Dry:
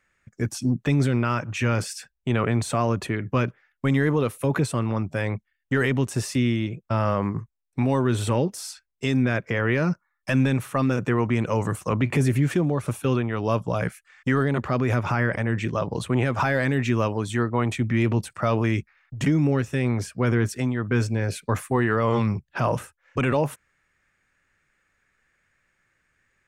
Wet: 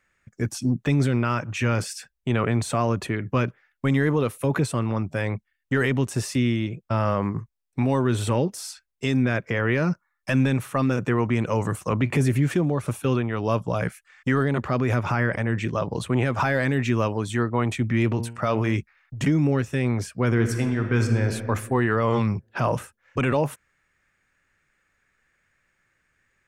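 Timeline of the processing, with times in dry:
18.09–18.77 de-hum 116.7 Hz, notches 26
20.29–21.3 reverb throw, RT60 1.8 s, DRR 5 dB

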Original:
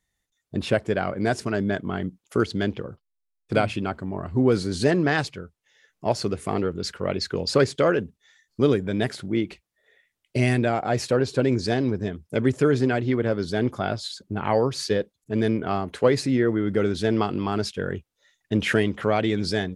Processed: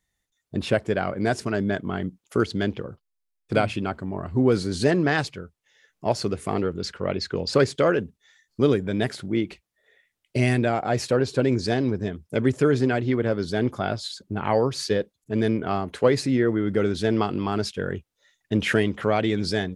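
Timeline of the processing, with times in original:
6.85–7.53 air absorption 50 m

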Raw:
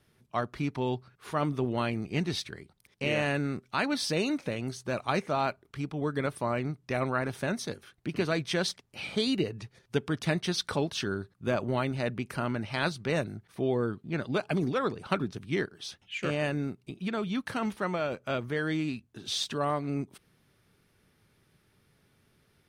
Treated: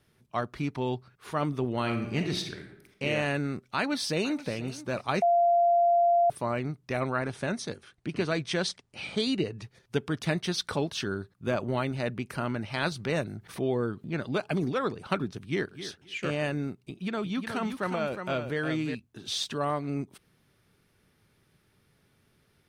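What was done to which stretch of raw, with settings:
1.79–3.03 reverb throw, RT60 0.89 s, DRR 4.5 dB
3.76–4.53 echo throw 0.48 s, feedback 15%, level -16 dB
5.22–6.3 bleep 691 Hz -19 dBFS
7.01–9.6 steep low-pass 10000 Hz
12.92–14.47 upward compressor, threshold -32 dBFS
15.36–15.87 echo throw 0.26 s, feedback 15%, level -12.5 dB
16.84–18.95 echo 0.36 s -7 dB

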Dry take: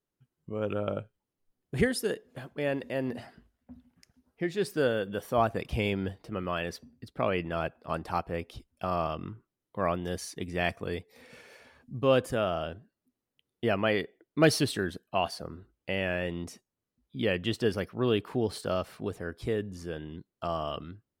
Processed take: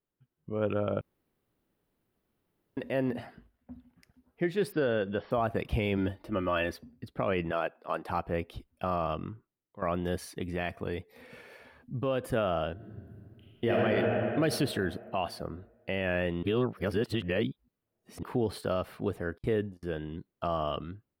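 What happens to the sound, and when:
1.01–2.77 room tone
4.72–5.31 brick-wall FIR low-pass 5600 Hz
5.97–6.74 comb 3.4 ms
7.51–8.09 HPF 330 Hz
9.08–9.82 fade out, to -15 dB
10.32–12.24 compressor 3:1, threshold -31 dBFS
12.74–13.73 reverb throw, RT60 2.6 s, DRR -8 dB
16.43–18.23 reverse
19.38–19.83 gate -40 dBFS, range -41 dB
whole clip: bell 6600 Hz -11.5 dB 1.2 oct; AGC gain up to 4 dB; limiter -17 dBFS; gain -1.5 dB

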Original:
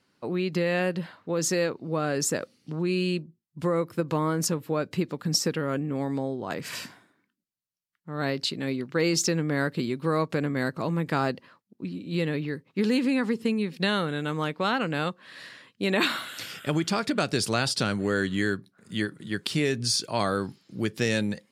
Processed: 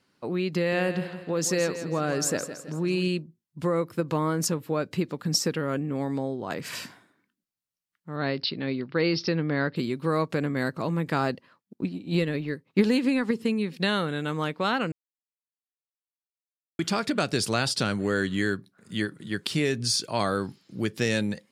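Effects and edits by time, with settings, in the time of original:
0.56–3.08 feedback echo 0.164 s, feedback 46%, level -11 dB
8.16–9.76 steep low-pass 5300 Hz 96 dB/oct
11.32–13.31 transient shaper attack +7 dB, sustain -5 dB
14.92–16.79 mute

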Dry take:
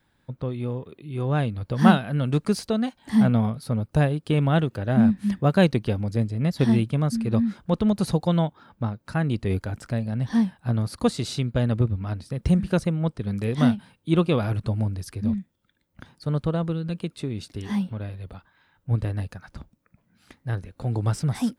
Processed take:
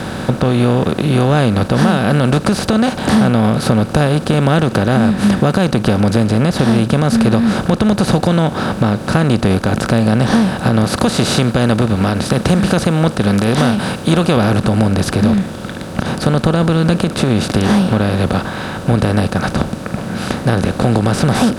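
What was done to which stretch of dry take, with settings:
10.84–14.37 tilt +1.5 dB/oct
whole clip: per-bin compression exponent 0.4; compressor, threshold -18 dBFS; maximiser +10.5 dB; gain -1 dB

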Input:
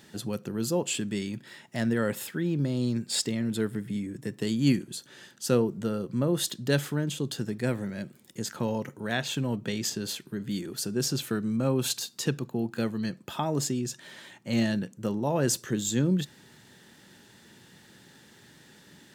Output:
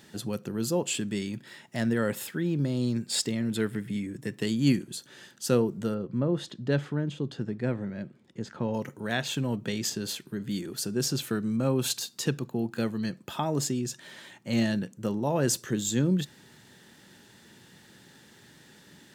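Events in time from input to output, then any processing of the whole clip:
3.55–4.46 dynamic EQ 2300 Hz, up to +6 dB, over -52 dBFS, Q 1.1
5.94–8.74 tape spacing loss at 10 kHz 23 dB

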